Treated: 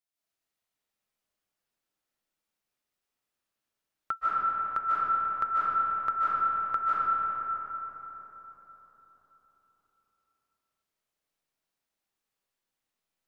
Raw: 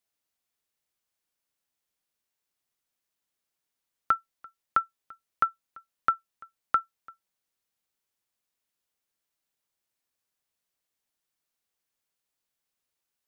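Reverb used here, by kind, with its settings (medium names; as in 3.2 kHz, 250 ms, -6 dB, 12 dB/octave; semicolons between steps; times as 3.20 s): algorithmic reverb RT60 4.5 s, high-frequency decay 0.4×, pre-delay 110 ms, DRR -9.5 dB; trim -8.5 dB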